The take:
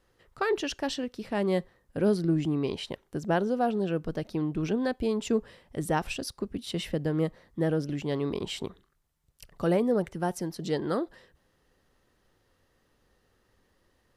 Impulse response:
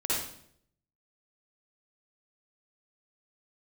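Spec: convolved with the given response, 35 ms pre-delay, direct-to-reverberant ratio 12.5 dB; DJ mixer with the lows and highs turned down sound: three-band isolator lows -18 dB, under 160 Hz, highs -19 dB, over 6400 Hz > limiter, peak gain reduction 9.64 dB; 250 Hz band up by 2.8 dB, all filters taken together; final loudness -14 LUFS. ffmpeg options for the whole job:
-filter_complex "[0:a]equalizer=f=250:t=o:g=5.5,asplit=2[a][b];[1:a]atrim=start_sample=2205,adelay=35[c];[b][c]afir=irnorm=-1:irlink=0,volume=-20.5dB[d];[a][d]amix=inputs=2:normalize=0,acrossover=split=160 6400:gain=0.126 1 0.112[e][f][g];[e][f][g]amix=inputs=3:normalize=0,volume=17.5dB,alimiter=limit=-4dB:level=0:latency=1"

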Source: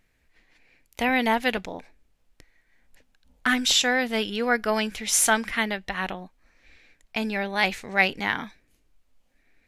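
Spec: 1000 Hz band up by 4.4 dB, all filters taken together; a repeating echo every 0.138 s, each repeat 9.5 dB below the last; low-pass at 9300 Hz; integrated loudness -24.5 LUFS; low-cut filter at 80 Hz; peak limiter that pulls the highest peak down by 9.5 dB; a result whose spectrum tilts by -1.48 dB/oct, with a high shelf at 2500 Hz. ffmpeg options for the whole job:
-af "highpass=80,lowpass=9.3k,equalizer=f=1k:t=o:g=5,highshelf=f=2.5k:g=5.5,alimiter=limit=-11.5dB:level=0:latency=1,aecho=1:1:138|276|414|552:0.335|0.111|0.0365|0.012,volume=-1dB"

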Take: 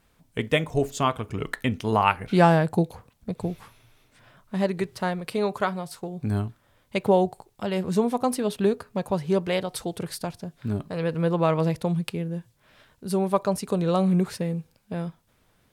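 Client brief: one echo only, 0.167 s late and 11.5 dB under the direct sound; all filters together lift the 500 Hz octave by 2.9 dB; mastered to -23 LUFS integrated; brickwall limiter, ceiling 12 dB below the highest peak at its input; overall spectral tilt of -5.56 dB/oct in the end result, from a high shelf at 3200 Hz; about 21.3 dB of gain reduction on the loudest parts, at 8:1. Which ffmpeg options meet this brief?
-af "equalizer=f=500:t=o:g=3.5,highshelf=f=3.2k:g=5.5,acompressor=threshold=-34dB:ratio=8,alimiter=level_in=5.5dB:limit=-24dB:level=0:latency=1,volume=-5.5dB,aecho=1:1:167:0.266,volume=17.5dB"

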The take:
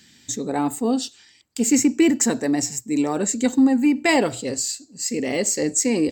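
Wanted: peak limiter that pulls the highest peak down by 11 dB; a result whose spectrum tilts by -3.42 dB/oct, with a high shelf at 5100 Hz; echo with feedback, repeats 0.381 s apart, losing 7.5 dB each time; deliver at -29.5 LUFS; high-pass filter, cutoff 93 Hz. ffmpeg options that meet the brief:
-af "highpass=93,highshelf=f=5.1k:g=-5,alimiter=limit=-19dB:level=0:latency=1,aecho=1:1:381|762|1143|1524|1905:0.422|0.177|0.0744|0.0312|0.0131,volume=-2.5dB"

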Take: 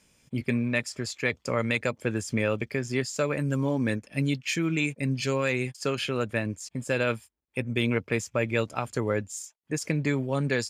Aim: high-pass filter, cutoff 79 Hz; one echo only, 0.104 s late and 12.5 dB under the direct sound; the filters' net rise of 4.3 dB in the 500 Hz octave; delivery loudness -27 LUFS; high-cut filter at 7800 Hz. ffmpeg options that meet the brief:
-af "highpass=79,lowpass=7.8k,equalizer=f=500:t=o:g=5,aecho=1:1:104:0.237,volume=-0.5dB"

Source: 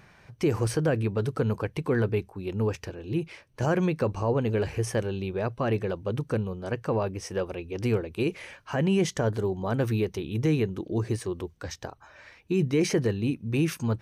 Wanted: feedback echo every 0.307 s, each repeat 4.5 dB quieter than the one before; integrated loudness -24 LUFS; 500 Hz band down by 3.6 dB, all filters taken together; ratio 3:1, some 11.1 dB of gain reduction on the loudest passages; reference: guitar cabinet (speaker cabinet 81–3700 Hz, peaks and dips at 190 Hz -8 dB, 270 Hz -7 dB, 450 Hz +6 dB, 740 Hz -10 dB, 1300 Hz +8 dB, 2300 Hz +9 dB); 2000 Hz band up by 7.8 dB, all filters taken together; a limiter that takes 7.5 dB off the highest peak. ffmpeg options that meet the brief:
-af "equalizer=f=500:t=o:g=-7.5,equalizer=f=2k:t=o:g=4,acompressor=threshold=-38dB:ratio=3,alimiter=level_in=8.5dB:limit=-24dB:level=0:latency=1,volume=-8.5dB,highpass=81,equalizer=f=190:t=q:w=4:g=-8,equalizer=f=270:t=q:w=4:g=-7,equalizer=f=450:t=q:w=4:g=6,equalizer=f=740:t=q:w=4:g=-10,equalizer=f=1.3k:t=q:w=4:g=8,equalizer=f=2.3k:t=q:w=4:g=9,lowpass=f=3.7k:w=0.5412,lowpass=f=3.7k:w=1.3066,aecho=1:1:307|614|921|1228|1535|1842|2149|2456|2763:0.596|0.357|0.214|0.129|0.0772|0.0463|0.0278|0.0167|0.01,volume=15.5dB"

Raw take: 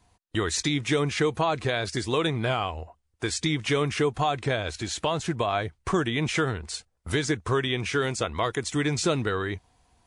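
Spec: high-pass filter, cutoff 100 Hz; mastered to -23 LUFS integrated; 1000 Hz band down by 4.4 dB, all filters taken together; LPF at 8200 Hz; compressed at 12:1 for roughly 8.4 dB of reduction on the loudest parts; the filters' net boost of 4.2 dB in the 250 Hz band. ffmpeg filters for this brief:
-af "highpass=100,lowpass=8.2k,equalizer=f=250:t=o:g=6.5,equalizer=f=1k:t=o:g=-6.5,acompressor=threshold=-26dB:ratio=12,volume=9dB"

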